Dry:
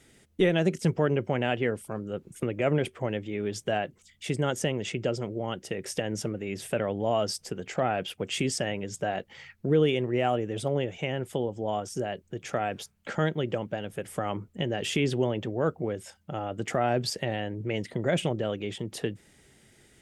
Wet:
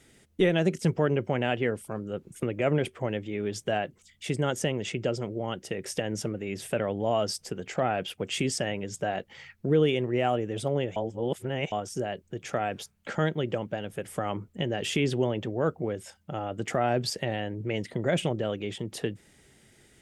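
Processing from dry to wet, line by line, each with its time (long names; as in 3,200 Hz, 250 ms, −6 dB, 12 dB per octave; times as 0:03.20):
0:10.96–0:11.72: reverse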